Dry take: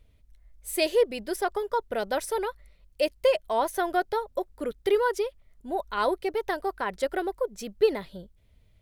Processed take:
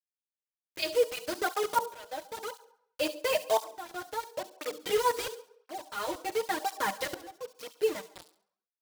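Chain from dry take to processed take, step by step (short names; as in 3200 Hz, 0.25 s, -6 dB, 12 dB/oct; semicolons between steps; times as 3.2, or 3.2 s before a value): steep low-pass 5900 Hz 48 dB/oct; low shelf 410 Hz -8 dB; comb 6.4 ms, depth 98%; in parallel at +2 dB: compressor 20:1, threshold -35 dBFS, peak gain reduction 21 dB; on the sum: bit-crush 5-bit; tremolo saw up 0.56 Hz, depth 95%; thin delay 69 ms, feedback 30%, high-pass 3800 Hz, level -8.5 dB; on a send at -12.5 dB: reverb RT60 0.70 s, pre-delay 3 ms; on the sum: tape flanging out of phase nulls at 0.97 Hz, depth 5.4 ms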